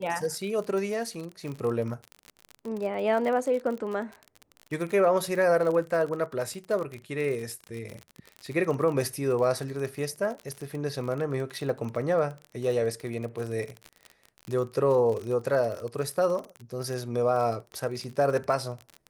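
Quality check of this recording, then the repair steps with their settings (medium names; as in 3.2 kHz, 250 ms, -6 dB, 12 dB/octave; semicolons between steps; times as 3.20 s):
crackle 39 per s -32 dBFS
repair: de-click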